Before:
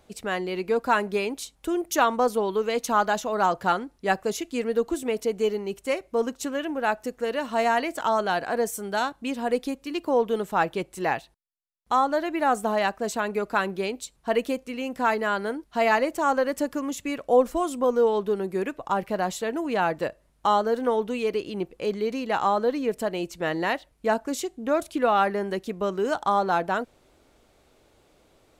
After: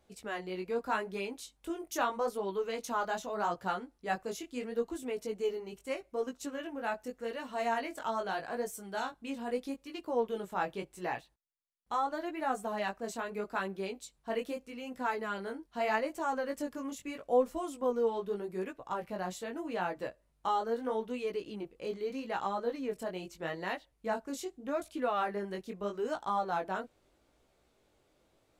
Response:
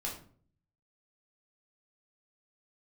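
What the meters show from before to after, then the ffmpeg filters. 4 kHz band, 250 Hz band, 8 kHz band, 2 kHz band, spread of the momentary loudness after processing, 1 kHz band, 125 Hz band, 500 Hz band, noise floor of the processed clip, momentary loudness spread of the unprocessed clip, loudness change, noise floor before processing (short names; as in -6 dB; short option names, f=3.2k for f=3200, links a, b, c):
-10.5 dB, -10.5 dB, -10.5 dB, -10.5 dB, 8 LU, -10.0 dB, -10.0 dB, -10.0 dB, -72 dBFS, 7 LU, -10.0 dB, -63 dBFS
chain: -af "flanger=delay=15.5:depth=6.5:speed=0.8,volume=-7.5dB"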